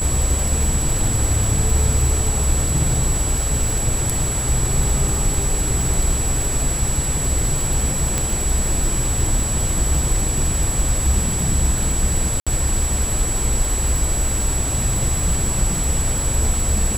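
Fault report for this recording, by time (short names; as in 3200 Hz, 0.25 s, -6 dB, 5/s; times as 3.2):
crackle 61/s -22 dBFS
tone 7800 Hz -23 dBFS
8.18 pop
12.4–12.47 gap 66 ms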